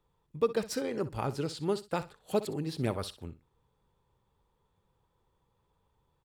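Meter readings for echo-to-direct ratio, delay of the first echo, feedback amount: -15.5 dB, 62 ms, 20%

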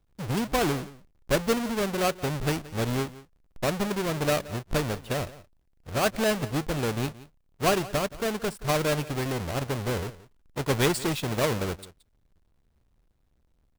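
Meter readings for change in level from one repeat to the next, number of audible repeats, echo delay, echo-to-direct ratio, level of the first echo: no regular repeats, 1, 174 ms, -18.5 dB, -18.5 dB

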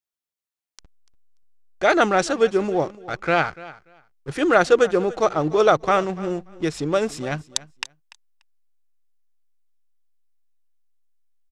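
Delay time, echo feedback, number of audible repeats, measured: 291 ms, 17%, 2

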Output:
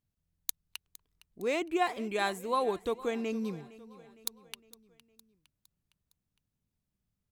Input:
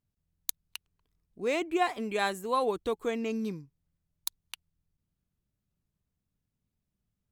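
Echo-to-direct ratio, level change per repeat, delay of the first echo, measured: -17.5 dB, -5.5 dB, 460 ms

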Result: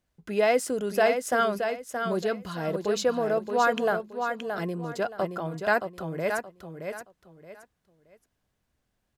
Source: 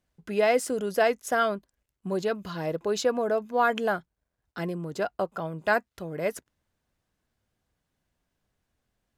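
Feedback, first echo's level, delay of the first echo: 27%, -6.5 dB, 623 ms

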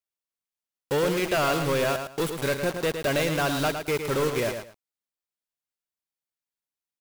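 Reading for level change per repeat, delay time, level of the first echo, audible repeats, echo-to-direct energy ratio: -13.5 dB, 110 ms, -7.5 dB, 2, -7.5 dB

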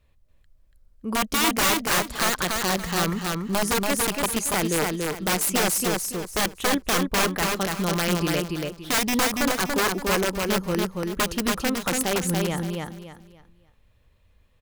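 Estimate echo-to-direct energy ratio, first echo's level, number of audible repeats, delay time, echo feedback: -2.5 dB, -3.0 dB, 3, 285 ms, 29%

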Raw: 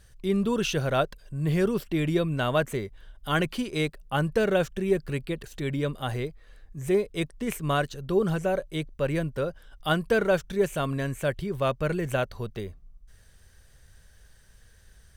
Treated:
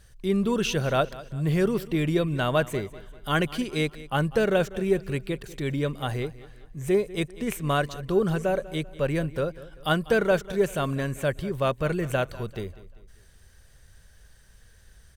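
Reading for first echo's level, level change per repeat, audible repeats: -18.0 dB, -7.5 dB, 3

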